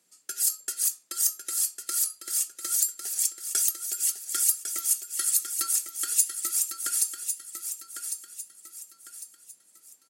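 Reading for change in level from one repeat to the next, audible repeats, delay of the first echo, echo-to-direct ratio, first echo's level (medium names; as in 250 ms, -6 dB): -9.0 dB, 4, 1102 ms, -7.5 dB, -8.0 dB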